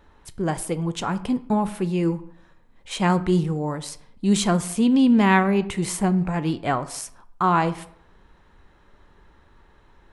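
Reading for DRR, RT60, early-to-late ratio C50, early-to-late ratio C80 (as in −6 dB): 12.0 dB, 0.70 s, 16.5 dB, 19.5 dB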